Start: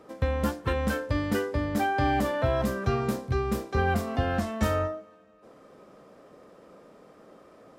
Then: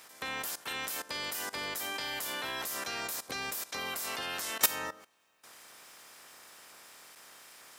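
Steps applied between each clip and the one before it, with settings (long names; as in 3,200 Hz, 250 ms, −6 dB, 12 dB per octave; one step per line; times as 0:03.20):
ceiling on every frequency bin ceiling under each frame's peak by 23 dB
RIAA equalisation recording
output level in coarse steps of 17 dB
level −3 dB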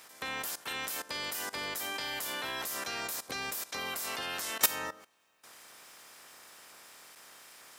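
no processing that can be heard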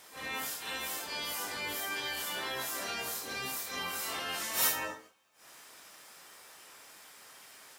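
random phases in long frames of 200 ms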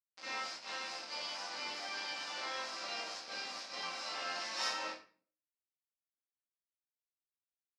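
bit reduction 6 bits
loudspeaker in its box 350–5,300 Hz, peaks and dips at 400 Hz −9 dB, 860 Hz −3 dB, 1,700 Hz −4 dB, 3,300 Hz −6 dB, 5,000 Hz +7 dB
convolution reverb RT60 0.40 s, pre-delay 5 ms, DRR −1 dB
level −5.5 dB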